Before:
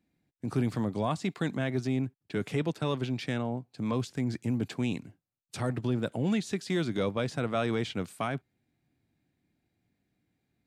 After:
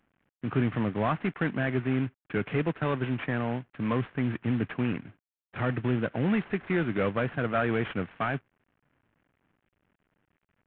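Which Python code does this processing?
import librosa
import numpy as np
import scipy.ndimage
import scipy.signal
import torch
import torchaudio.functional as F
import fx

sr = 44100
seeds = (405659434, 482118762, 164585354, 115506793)

y = fx.cvsd(x, sr, bps=16000)
y = fx.peak_eq(y, sr, hz=1600.0, db=6.0, octaves=0.83)
y = y * 10.0 ** (2.5 / 20.0)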